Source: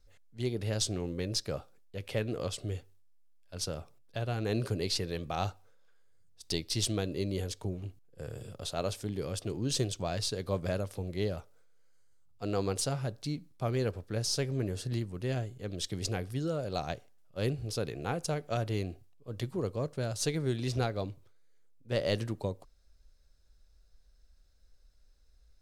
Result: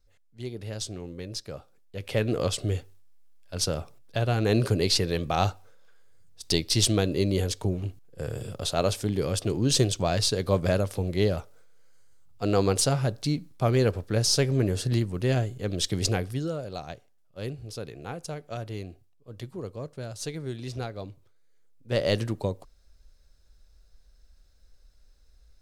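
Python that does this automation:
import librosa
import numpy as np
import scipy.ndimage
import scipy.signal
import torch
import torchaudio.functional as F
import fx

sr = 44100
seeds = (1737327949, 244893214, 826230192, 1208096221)

y = fx.gain(x, sr, db=fx.line((1.54, -3.0), (2.31, 8.5), (16.09, 8.5), (16.81, -3.0), (20.97, -3.0), (22.02, 5.5)))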